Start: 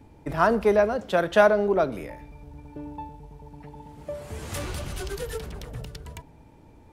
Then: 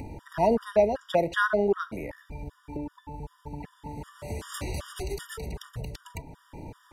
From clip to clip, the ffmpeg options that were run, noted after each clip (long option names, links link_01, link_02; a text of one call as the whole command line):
ffmpeg -i in.wav -af "acompressor=mode=upward:threshold=-28dB:ratio=2.5,afftfilt=real='re*gt(sin(2*PI*2.6*pts/sr)*(1-2*mod(floor(b*sr/1024/950),2)),0)':imag='im*gt(sin(2*PI*2.6*pts/sr)*(1-2*mod(floor(b*sr/1024/950),2)),0)':win_size=1024:overlap=0.75" out.wav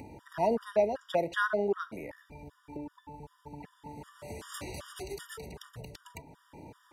ffmpeg -i in.wav -af "highpass=frequency=170:poles=1,volume=-4.5dB" out.wav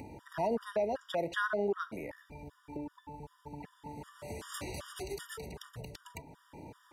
ffmpeg -i in.wav -af "alimiter=limit=-23dB:level=0:latency=1:release=103" out.wav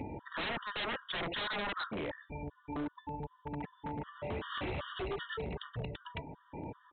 ffmpeg -i in.wav -af "afftdn=noise_reduction=13:noise_floor=-59,aresample=8000,aeval=exprs='0.0133*(abs(mod(val(0)/0.0133+3,4)-2)-1)':channel_layout=same,aresample=44100,volume=6dB" out.wav